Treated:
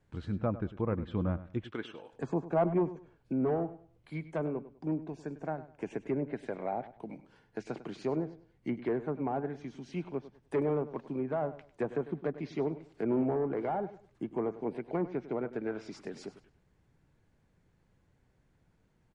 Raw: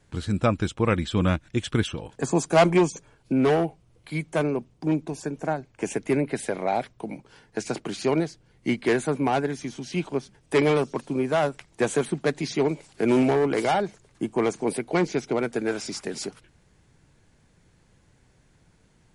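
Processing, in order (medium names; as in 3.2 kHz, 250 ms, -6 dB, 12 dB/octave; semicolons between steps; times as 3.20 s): 1.64–2.13 s: high-pass 360 Hz 12 dB/octave; low-pass that closes with the level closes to 1.1 kHz, closed at -19 dBFS; treble shelf 3.4 kHz -12 dB; feedback delay 100 ms, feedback 26%, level -15 dB; trim -9 dB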